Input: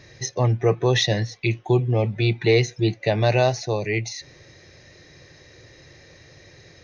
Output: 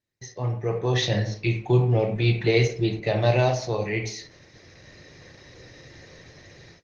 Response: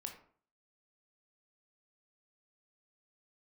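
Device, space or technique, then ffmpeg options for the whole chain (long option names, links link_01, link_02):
speakerphone in a meeting room: -filter_complex "[0:a]asettb=1/sr,asplit=3[link_01][link_02][link_03];[link_01]atrim=end=2.894[link_04];[link_02]atrim=start=2.89:end=3.32,asetpts=PTS-STARTPTS,afade=type=in:duration=0.004:curve=qsin,afade=type=out:start_time=0.426:duration=0.004:curve=qsin,agate=range=-33dB:threshold=-47dB:ratio=3:detection=peak[link_05];[link_03]atrim=start=3.316[link_06];[link_04][link_05]acrossfade=duration=0.004:curve1=hsin:curve2=qsin[link_07];[link_07][link_06]acrossfade=duration=0.004:curve1=qsin:curve2=hsin[link_08];[1:a]atrim=start_sample=2205[link_09];[link_08][link_09]afir=irnorm=-1:irlink=0,dynaudnorm=framelen=610:gausssize=3:maxgain=13dB,agate=range=-28dB:threshold=-43dB:ratio=16:detection=peak,volume=-6.5dB" -ar 48000 -c:a libopus -b:a 16k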